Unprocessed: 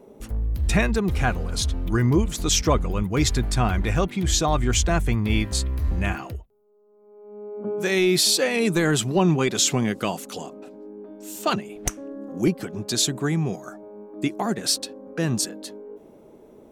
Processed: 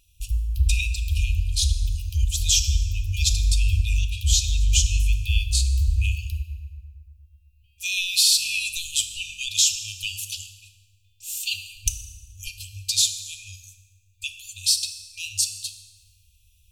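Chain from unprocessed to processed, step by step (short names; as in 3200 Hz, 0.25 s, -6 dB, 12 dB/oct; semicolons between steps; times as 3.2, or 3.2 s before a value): FFT band-reject 100–2400 Hz; in parallel at +1 dB: compressor, threshold -31 dBFS, peak gain reduction 13.5 dB; 8.31–9.37 on the sum: buzz 50 Hz, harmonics 4, -59 dBFS -4 dB/oct; FDN reverb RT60 2.2 s, low-frequency decay 1.1×, high-frequency decay 0.5×, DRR 5.5 dB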